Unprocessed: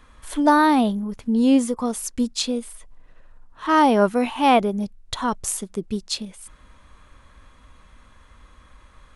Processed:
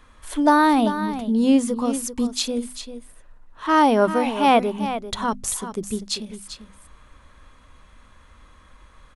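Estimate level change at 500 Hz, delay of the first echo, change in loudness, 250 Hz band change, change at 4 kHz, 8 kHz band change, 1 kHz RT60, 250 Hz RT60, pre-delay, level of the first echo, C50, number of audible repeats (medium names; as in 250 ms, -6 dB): +0.5 dB, 393 ms, 0.0 dB, 0.0 dB, +0.5 dB, +0.5 dB, no reverb, no reverb, no reverb, -11.0 dB, no reverb, 1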